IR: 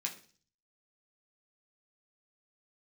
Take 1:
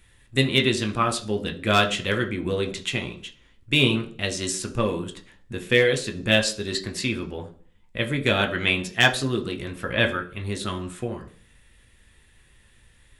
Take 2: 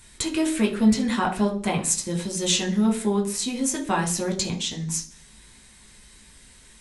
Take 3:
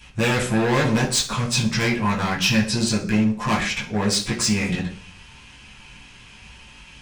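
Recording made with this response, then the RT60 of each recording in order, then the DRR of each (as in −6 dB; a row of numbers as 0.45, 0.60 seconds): 2; 0.40, 0.40, 0.40 seconds; 4.5, −0.5, −6.5 decibels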